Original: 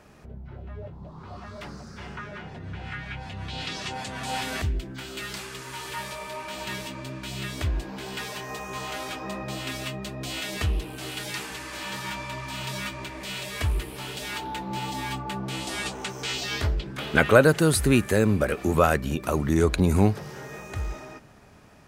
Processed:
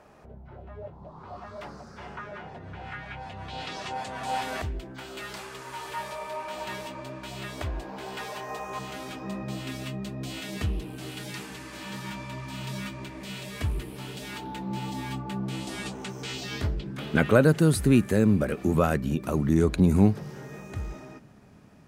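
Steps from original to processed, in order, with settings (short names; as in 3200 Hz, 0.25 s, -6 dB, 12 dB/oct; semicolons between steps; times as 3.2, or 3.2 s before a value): bell 740 Hz +9.5 dB 2 oct, from 8.79 s 190 Hz; gain -6.5 dB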